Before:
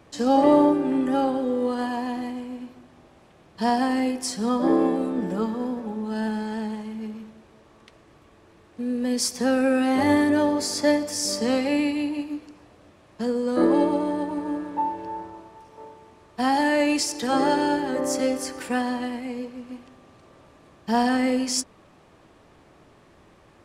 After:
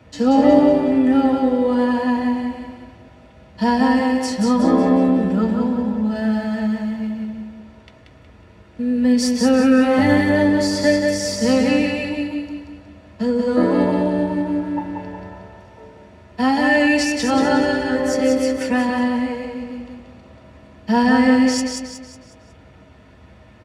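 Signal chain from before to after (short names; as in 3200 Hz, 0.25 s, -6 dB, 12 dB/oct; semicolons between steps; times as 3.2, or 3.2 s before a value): 6.13–7.22 G.711 law mismatch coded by A; feedback echo 0.183 s, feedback 42%, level -4 dB; reverb RT60 0.10 s, pre-delay 3 ms, DRR 3 dB; gain -4 dB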